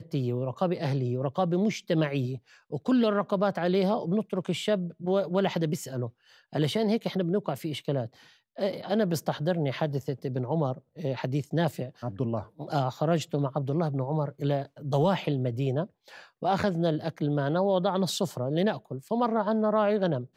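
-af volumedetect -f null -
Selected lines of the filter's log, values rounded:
mean_volume: -28.1 dB
max_volume: -14.5 dB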